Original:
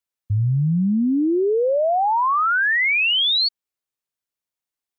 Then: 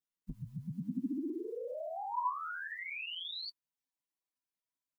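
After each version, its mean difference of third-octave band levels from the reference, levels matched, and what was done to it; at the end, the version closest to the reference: 8.5 dB: spectral gate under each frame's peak -15 dB weak; comb 6.3 ms, depth 65%; peak limiter -46.5 dBFS, peak gain reduction 11 dB; small resonant body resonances 250/1000 Hz, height 15 dB, ringing for 95 ms; trim +11 dB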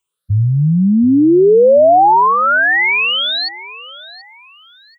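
4.5 dB: drifting ripple filter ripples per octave 0.68, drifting +1.4 Hz, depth 18 dB; dynamic bell 1.2 kHz, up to -6 dB, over -30 dBFS, Q 4.7; in parallel at +1 dB: peak limiter -18 dBFS, peak gain reduction 11 dB; on the sum: feedback delay 731 ms, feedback 30%, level -18 dB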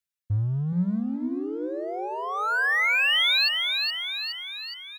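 13.5 dB: reverb removal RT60 1.5 s; high-order bell 550 Hz -12.5 dB 2.3 oct; in parallel at -4 dB: overload inside the chain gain 33.5 dB; on the sum: frequency-shifting echo 418 ms, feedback 57%, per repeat +64 Hz, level -4.5 dB; trim -5 dB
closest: second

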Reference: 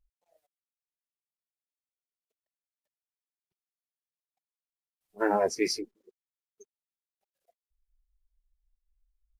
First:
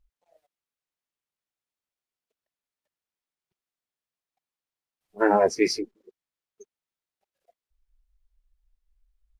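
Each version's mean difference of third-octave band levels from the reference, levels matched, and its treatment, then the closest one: 1.5 dB: treble shelf 6.8 kHz -10.5 dB; trim +6 dB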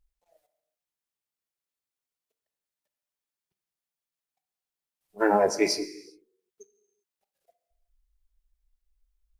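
3.5 dB: gated-style reverb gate 420 ms falling, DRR 11 dB; trim +3.5 dB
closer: first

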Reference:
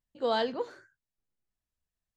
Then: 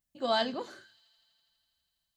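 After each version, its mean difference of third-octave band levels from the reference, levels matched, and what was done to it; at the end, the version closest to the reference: 3.5 dB: treble shelf 5.5 kHz +10 dB; comb of notches 470 Hz; de-hum 109.6 Hz, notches 5; on a send: feedback echo behind a high-pass 82 ms, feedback 84%, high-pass 3.3 kHz, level -22.5 dB; on the sum: trim +1.5 dB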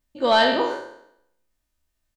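5.5 dB: spectral sustain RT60 0.74 s; dynamic bell 2.2 kHz, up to +4 dB, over -44 dBFS, Q 0.96; comb 3.3 ms, depth 52%; saturation -14.5 dBFS, distortion -21 dB; trim +8.5 dB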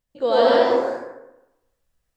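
8.5 dB: peaking EQ 530 Hz +6 dB 0.4 oct; in parallel at +1 dB: peak limiter -25.5 dBFS, peak gain reduction 10.5 dB; on the sum: ever faster or slower copies 95 ms, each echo +1 st, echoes 2; plate-style reverb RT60 0.93 s, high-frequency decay 0.5×, pre-delay 100 ms, DRR -3.5 dB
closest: first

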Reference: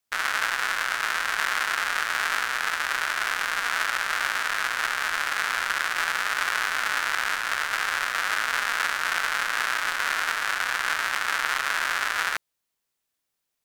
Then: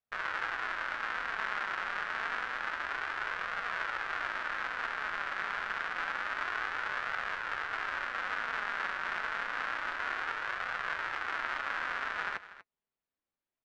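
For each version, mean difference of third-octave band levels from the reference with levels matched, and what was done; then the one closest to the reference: 8.0 dB: flange 0.28 Hz, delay 1.4 ms, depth 4 ms, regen -53%; tape spacing loss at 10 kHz 32 dB; delay 241 ms -15.5 dB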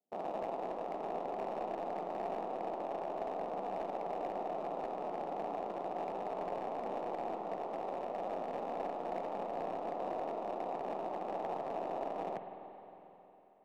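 17.5 dB: elliptic band-pass 180–730 Hz, stop band 40 dB; hard clipper -37 dBFS, distortion -18 dB; spring tank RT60 3.6 s, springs 45/51 ms, chirp 50 ms, DRR 6.5 dB; trim +5.5 dB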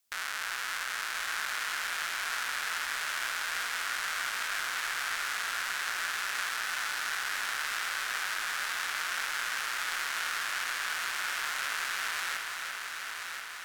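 3.0 dB: treble shelf 2.5 kHz +8.5 dB; peak limiter -16.5 dBFS, peak gain reduction 14 dB; on a send: multi-head delay 343 ms, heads first and third, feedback 66%, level -7 dB; on the sum: trim -2 dB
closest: third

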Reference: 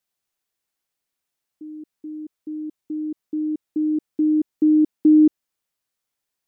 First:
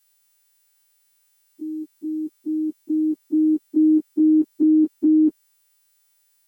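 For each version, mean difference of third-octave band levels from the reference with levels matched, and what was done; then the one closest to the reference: 1.5 dB: partials quantised in pitch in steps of 2 st; peaking EQ 250 Hz +2 dB; peak limiter -18 dBFS, peak gain reduction 10 dB; trim +6.5 dB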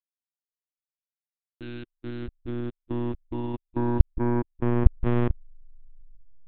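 15.0 dB: send-on-delta sampling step -40.5 dBFS; waveshaping leveller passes 3; monotone LPC vocoder at 8 kHz 120 Hz; trim -11 dB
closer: first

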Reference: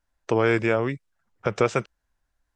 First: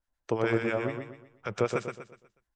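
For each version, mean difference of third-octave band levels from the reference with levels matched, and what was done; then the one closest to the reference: 3.5 dB: harmonic tremolo 9.2 Hz, crossover 1.1 kHz; feedback delay 122 ms, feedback 38%, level -5.5 dB; trim -4.5 dB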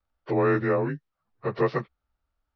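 5.0 dB: frequency axis rescaled in octaves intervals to 90%; distance through air 180 m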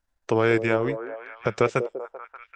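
2.0 dB: transient shaper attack 0 dB, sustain -7 dB; on a send: repeats whose band climbs or falls 194 ms, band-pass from 440 Hz, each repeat 0.7 oct, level -7 dB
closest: third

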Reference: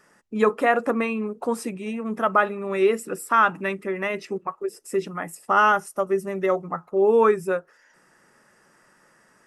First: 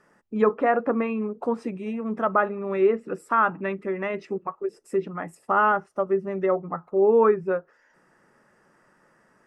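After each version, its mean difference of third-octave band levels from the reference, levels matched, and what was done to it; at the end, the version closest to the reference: 3.0 dB: low-pass that closes with the level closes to 2.3 kHz, closed at -18.5 dBFS; treble shelf 2.4 kHz -11.5 dB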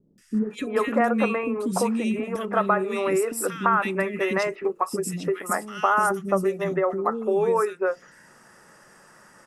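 10.0 dB: compression 6:1, threshold -25 dBFS, peak gain reduction 11 dB; three bands offset in time lows, highs, mids 180/340 ms, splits 330/2200 Hz; trim +7.5 dB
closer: first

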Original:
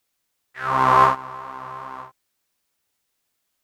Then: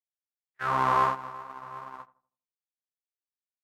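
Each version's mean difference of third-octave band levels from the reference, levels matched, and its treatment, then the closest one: 1.5 dB: gate -33 dBFS, range -39 dB; compression 2:1, threshold -21 dBFS, peak gain reduction 7 dB; on a send: filtered feedback delay 82 ms, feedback 39%, low-pass 1.2 kHz, level -17 dB; on the sum: trim -3 dB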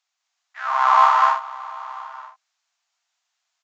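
8.0 dB: Chebyshev high-pass 680 Hz, order 5; resampled via 16 kHz; loudspeakers at several distances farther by 58 m -9 dB, 69 m -5 dB, 84 m -3 dB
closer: first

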